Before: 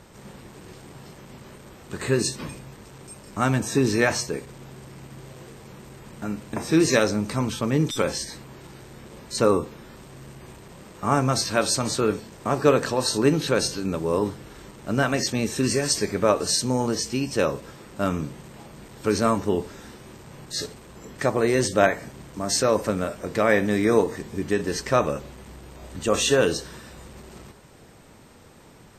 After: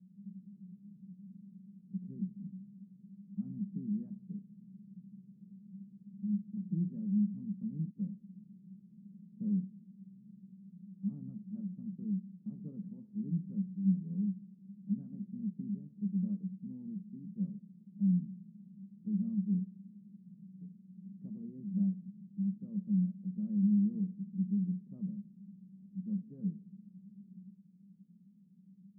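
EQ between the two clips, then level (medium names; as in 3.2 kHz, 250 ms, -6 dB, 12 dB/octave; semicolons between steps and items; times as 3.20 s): Butterworth band-pass 190 Hz, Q 6.6; distance through air 480 m; +3.5 dB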